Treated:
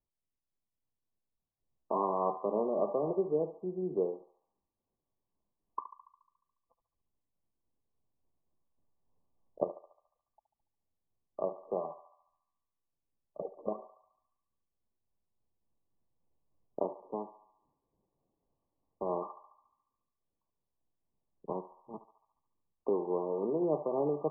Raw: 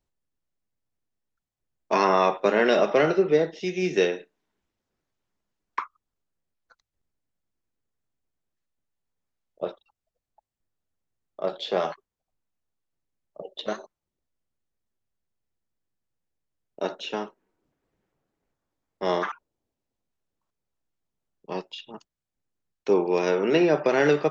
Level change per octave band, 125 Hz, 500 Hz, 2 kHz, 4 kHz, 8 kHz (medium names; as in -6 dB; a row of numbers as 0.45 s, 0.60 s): -10.0 dB, -9.5 dB, under -40 dB, under -40 dB, no reading